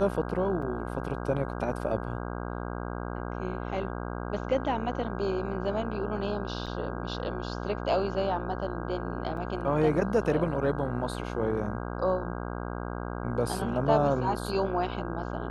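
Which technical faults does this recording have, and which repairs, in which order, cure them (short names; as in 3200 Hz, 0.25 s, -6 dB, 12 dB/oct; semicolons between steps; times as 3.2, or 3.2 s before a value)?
buzz 60 Hz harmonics 27 -35 dBFS
0.62 gap 3.7 ms
6.66–6.67 gap 6.7 ms
9.37 gap 2.8 ms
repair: de-hum 60 Hz, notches 27; interpolate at 0.62, 3.7 ms; interpolate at 6.66, 6.7 ms; interpolate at 9.37, 2.8 ms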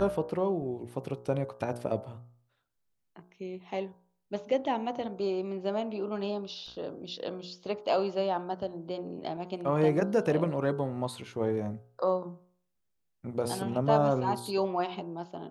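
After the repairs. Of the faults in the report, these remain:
none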